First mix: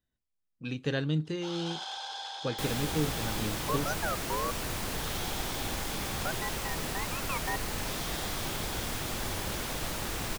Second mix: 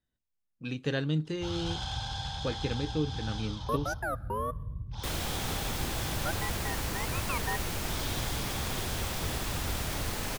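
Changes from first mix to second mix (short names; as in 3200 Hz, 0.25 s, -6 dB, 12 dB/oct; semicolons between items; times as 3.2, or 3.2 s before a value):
first sound: remove elliptic high-pass 370 Hz, stop band 40 dB; second sound: entry +2.45 s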